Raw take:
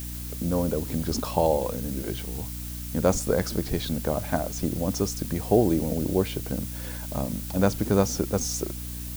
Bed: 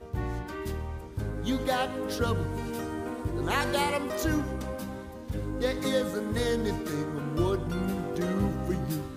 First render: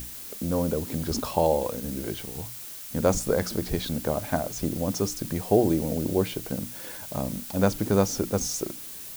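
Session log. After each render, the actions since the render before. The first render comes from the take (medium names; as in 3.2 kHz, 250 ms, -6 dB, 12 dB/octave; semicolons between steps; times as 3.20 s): hum notches 60/120/180/240/300 Hz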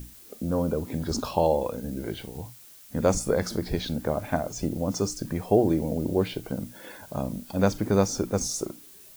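noise print and reduce 10 dB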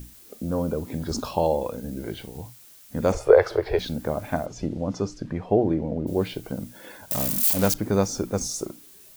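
3.12–3.79 s: FFT filter 120 Hz 0 dB, 210 Hz -29 dB, 410 Hz +12 dB, 2.7 kHz +6 dB, 7 kHz -12 dB; 4.45–6.06 s: low-pass 5 kHz -> 2.1 kHz; 7.11–7.74 s: zero-crossing glitches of -16 dBFS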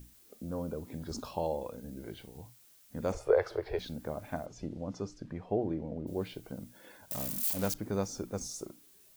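trim -11 dB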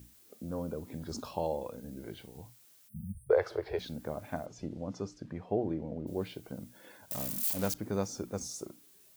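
2.89–3.30 s: spectral selection erased 230–8400 Hz; high-pass 62 Hz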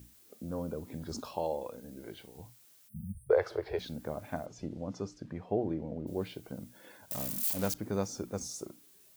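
1.21–2.39 s: tone controls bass -6 dB, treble 0 dB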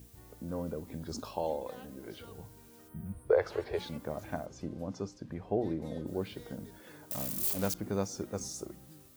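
add bed -24 dB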